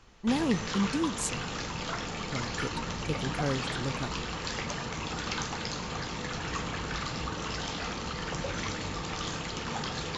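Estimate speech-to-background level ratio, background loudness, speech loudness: 1.0 dB, −34.5 LKFS, −33.5 LKFS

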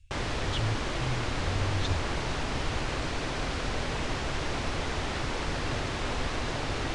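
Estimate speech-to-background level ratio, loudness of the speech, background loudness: −3.0 dB, −35.0 LKFS, −32.0 LKFS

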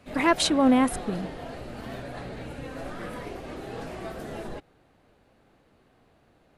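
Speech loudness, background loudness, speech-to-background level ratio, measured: −23.0 LKFS, −38.0 LKFS, 15.0 dB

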